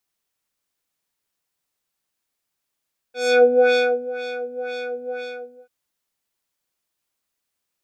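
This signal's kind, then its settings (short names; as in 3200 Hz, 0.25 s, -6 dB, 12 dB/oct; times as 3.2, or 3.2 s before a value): synth patch with filter wobble B4, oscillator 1 square, oscillator 2 square, interval +7 st, oscillator 2 level -11.5 dB, sub -18 dB, noise -24.5 dB, filter lowpass, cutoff 1000 Hz, Q 1.5, filter envelope 1.5 oct, filter decay 0.27 s, filter sustain 10%, attack 0.286 s, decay 0.67 s, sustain -16 dB, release 0.57 s, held 1.97 s, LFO 2 Hz, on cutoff 1.9 oct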